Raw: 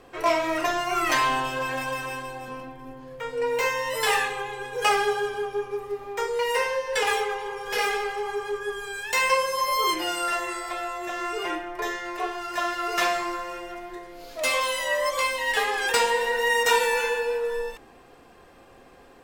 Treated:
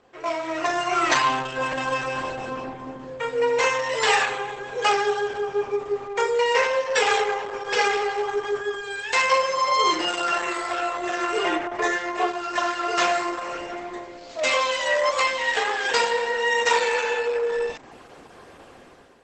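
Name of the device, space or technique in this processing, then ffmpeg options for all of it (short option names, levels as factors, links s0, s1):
video call: -af "highpass=f=110:p=1,dynaudnorm=f=170:g=7:m=4.47,volume=0.531" -ar 48000 -c:a libopus -b:a 12k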